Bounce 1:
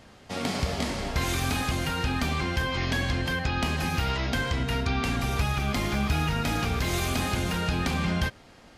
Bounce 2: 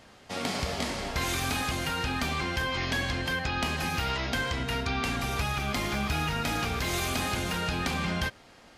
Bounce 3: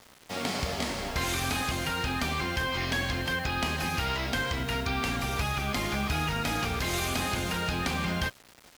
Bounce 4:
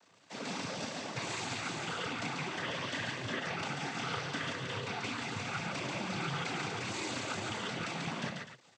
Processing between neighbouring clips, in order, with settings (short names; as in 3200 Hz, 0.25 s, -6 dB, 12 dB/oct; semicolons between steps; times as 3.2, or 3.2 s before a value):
low shelf 320 Hz -6 dB
requantised 8-bit, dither none
loudspeakers at several distances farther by 11 m -9 dB, 48 m -4 dB, 86 m -12 dB; noise vocoder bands 16; gain -8 dB